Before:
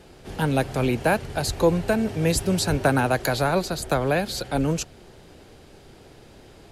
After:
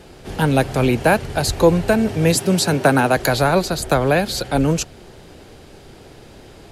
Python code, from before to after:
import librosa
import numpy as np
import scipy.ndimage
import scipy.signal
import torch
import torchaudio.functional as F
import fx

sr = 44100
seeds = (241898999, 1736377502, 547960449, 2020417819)

y = fx.highpass(x, sr, hz=130.0, slope=24, at=(2.35, 3.17))
y = y * librosa.db_to_amplitude(6.0)